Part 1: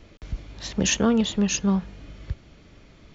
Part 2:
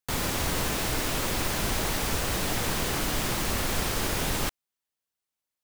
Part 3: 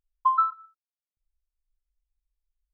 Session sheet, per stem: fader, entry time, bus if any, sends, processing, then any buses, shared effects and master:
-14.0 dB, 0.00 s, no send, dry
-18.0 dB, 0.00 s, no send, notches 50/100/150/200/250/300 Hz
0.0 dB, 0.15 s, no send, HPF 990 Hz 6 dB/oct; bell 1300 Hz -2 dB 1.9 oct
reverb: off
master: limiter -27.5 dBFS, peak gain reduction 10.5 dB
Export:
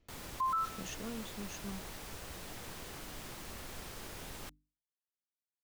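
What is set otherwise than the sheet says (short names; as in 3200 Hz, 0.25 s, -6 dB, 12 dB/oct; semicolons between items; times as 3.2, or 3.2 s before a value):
stem 1 -14.0 dB -> -23.0 dB; stem 3: missing HPF 990 Hz 6 dB/oct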